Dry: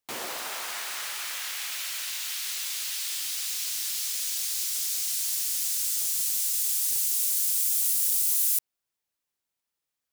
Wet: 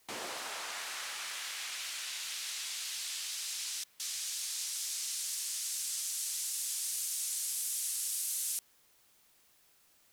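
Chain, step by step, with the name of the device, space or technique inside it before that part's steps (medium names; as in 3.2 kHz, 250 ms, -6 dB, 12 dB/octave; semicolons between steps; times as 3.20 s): worn cassette (low-pass 9.8 kHz 12 dB/octave; wow and flutter; level dips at 3.84 s, 155 ms -20 dB; white noise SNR 28 dB); trim -5 dB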